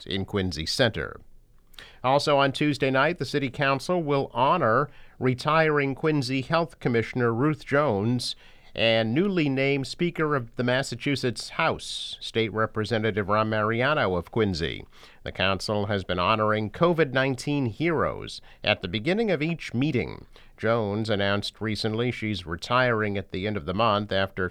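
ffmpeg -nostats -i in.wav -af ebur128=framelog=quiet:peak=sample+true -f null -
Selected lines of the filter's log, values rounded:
Integrated loudness:
  I:         -25.3 LUFS
  Threshold: -35.6 LUFS
Loudness range:
  LRA:         2.6 LU
  Threshold: -45.5 LUFS
  LRA low:   -26.9 LUFS
  LRA high:  -24.2 LUFS
Sample peak:
  Peak:       -7.0 dBFS
True peak:
  Peak:       -6.9 dBFS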